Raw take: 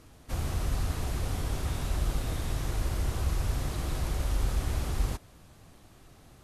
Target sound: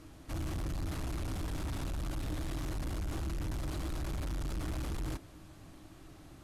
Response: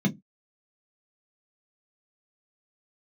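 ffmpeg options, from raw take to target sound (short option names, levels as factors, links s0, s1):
-filter_complex "[0:a]asoftclip=type=tanh:threshold=0.0188,highshelf=f=6300:g=-4,asplit=2[s0][s1];[1:a]atrim=start_sample=2205,asetrate=74970,aresample=44100[s2];[s1][s2]afir=irnorm=-1:irlink=0,volume=0.0841[s3];[s0][s3]amix=inputs=2:normalize=0,volume=1.12"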